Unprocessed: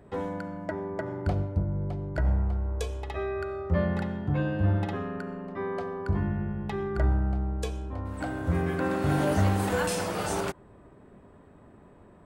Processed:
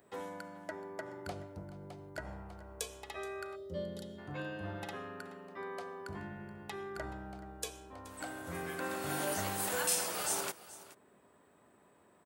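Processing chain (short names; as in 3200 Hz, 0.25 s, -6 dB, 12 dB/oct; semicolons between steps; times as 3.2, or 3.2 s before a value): HPF 60 Hz; RIAA curve recording; echo 0.426 s -17.5 dB; spectral gain 3.56–4.19, 650–2900 Hz -17 dB; gain -7.5 dB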